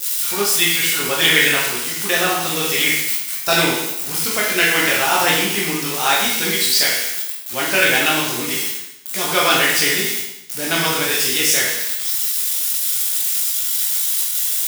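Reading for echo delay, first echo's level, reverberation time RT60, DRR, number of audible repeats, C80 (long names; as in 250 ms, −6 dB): no echo audible, no echo audible, 0.85 s, −5.5 dB, no echo audible, 4.0 dB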